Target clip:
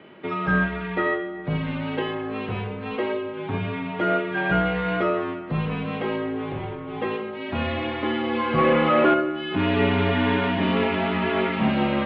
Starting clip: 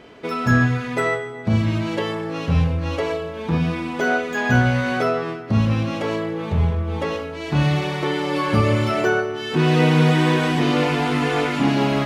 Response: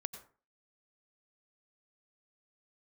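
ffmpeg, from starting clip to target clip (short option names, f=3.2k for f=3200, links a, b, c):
-filter_complex "[0:a]asplit=3[a][b][c];[a]afade=t=out:st=8.57:d=0.02[d];[b]asplit=2[e][f];[f]highpass=f=720:p=1,volume=21dB,asoftclip=type=tanh:threshold=-5.5dB[g];[e][g]amix=inputs=2:normalize=0,lowpass=f=1.1k:p=1,volume=-6dB,afade=t=in:st=8.57:d=0.02,afade=t=out:st=9.13:d=0.02[h];[c]afade=t=in:st=9.13:d=0.02[i];[d][h][i]amix=inputs=3:normalize=0,asplit=2[j][k];[1:a]atrim=start_sample=2205,asetrate=25137,aresample=44100[l];[k][l]afir=irnorm=-1:irlink=0,volume=-10.5dB[m];[j][m]amix=inputs=2:normalize=0,highpass=f=200:t=q:w=0.5412,highpass=f=200:t=q:w=1.307,lowpass=f=3.5k:t=q:w=0.5176,lowpass=f=3.5k:t=q:w=0.7071,lowpass=f=3.5k:t=q:w=1.932,afreqshift=-62,volume=-4.5dB"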